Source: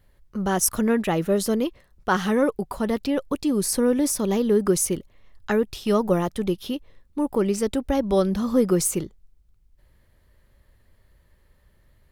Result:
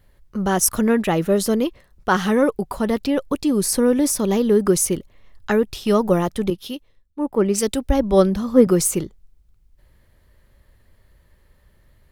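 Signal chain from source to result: 6.50–8.67 s: three bands expanded up and down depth 100%; trim +3.5 dB

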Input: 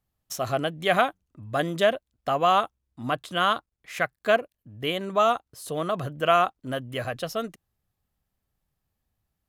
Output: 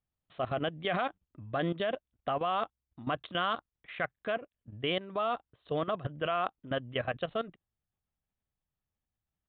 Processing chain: resampled via 8 kHz; level held to a coarse grid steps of 15 dB

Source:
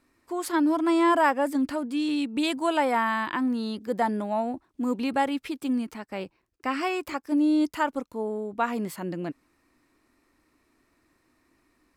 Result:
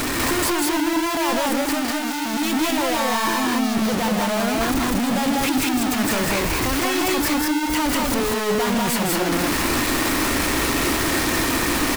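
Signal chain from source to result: one-bit comparator; 1.61–2.34 s: bass shelf 370 Hz -7 dB; loudspeakers at several distances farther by 55 m -6 dB, 67 m -1 dB; trim +4 dB

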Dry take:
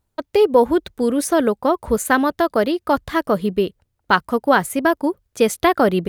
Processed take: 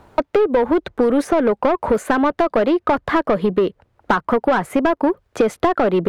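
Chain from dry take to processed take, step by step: treble shelf 2.6 kHz -10 dB; compression, threshold -18 dBFS, peak gain reduction 9 dB; overdrive pedal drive 22 dB, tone 1.3 kHz, clips at -6 dBFS; three bands compressed up and down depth 70%

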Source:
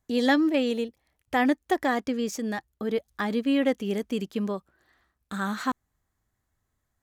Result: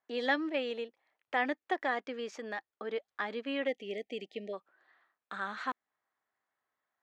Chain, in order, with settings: spectral selection erased 3.67–4.53 s, 790–1800 Hz; band-pass 610–2600 Hz; dynamic bell 1 kHz, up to -6 dB, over -42 dBFS, Q 0.78

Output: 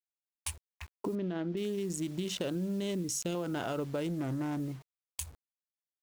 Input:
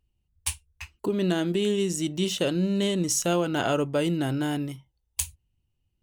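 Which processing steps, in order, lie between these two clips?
local Wiener filter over 15 samples; 2.95–3.35 s: high-order bell 980 Hz -9.5 dB; peak limiter -19 dBFS, peak gain reduction 10 dB; compression 12:1, threshold -29 dBFS, peak gain reduction 7.5 dB; bit crusher 9-bit; 1.15–1.57 s: distance through air 240 m; 4.08–4.60 s: loudspeaker Doppler distortion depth 0.34 ms; trim -1.5 dB

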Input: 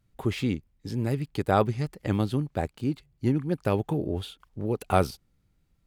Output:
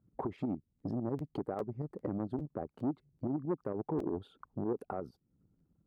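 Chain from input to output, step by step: resonances exaggerated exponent 1.5; tremolo saw up 11 Hz, depth 55%; resonant high shelf 1.9 kHz -10.5 dB, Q 1.5; compression 8:1, threshold -39 dBFS, peak gain reduction 21.5 dB; high-pass 120 Hz 6 dB/octave; peak limiter -33 dBFS, peak gain reduction 7.5 dB; peaking EQ 330 Hz +12 dB 2.9 oct; crackling interface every 0.40 s, samples 512, repeat, from 0.78 s; transformer saturation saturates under 390 Hz

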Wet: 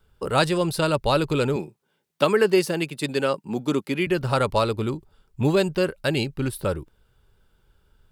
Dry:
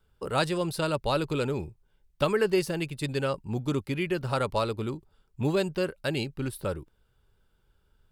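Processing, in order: 1.56–4.07 s: high-pass 170 Hz 24 dB/octave; trim +6 dB

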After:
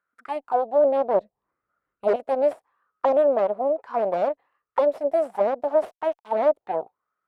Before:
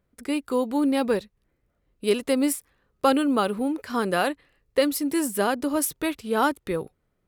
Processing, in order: 1.14–2.16 s: bass shelf 500 Hz +10.5 dB; 5.62–6.32 s: small samples zeroed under -32 dBFS; Chebyshev shaper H 8 -10 dB, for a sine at -4.5 dBFS; in parallel at 0 dB: peak limiter -12.5 dBFS, peak gain reduction 10.5 dB; on the sum: auto-wah 620–1400 Hz, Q 6.6, down, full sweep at -12.5 dBFS; trim +3 dB

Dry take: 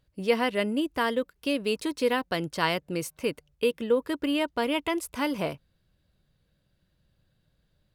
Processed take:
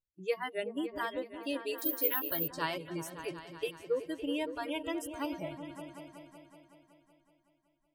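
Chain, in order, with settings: spectral noise reduction 30 dB; in parallel at +1 dB: compression, threshold -59 dBFS, peak gain reduction 35.5 dB; on the sum: delay with an opening low-pass 187 ms, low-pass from 200 Hz, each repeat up 2 oct, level -6 dB; 1.78–2.48 s: careless resampling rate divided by 3×, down none, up zero stuff; trim -8 dB

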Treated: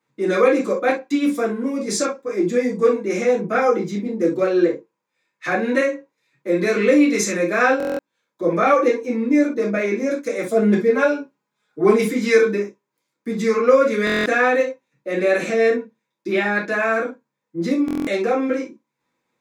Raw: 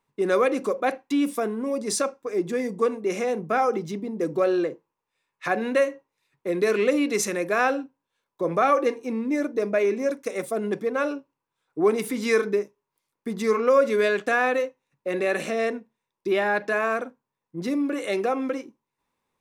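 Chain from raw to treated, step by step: 10.48–12.08 s: comb 4.8 ms, depth 94%; reverberation, pre-delay 3 ms, DRR -7 dB; buffer glitch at 7.78/14.05/17.86 s, samples 1024, times 8; trim -3 dB

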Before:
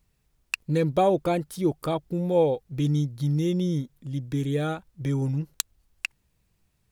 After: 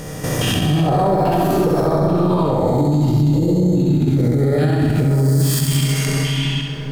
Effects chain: reverse spectral sustain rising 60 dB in 1.35 s; algorithmic reverb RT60 4 s, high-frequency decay 0.6×, pre-delay 75 ms, DRR 4 dB; LFO notch square 1.2 Hz 500–2600 Hz; level held to a coarse grid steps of 10 dB; formant shift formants +3 st; in parallel at +3 dB: compression, threshold -35 dBFS, peak gain reduction 16 dB; on the sum: bass shelf 420 Hz +11 dB; on a send: flutter echo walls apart 11.4 m, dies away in 1 s; on the sum: peak limiter -14.5 dBFS, peak gain reduction 13.5 dB; trim +6 dB

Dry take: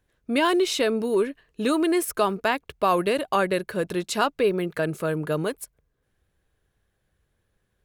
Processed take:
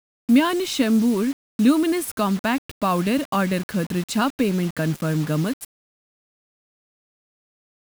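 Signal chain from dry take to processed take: mains buzz 400 Hz, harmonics 13, -55 dBFS -2 dB/octave; resonant low shelf 320 Hz +6.5 dB, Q 3; word length cut 6-bit, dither none

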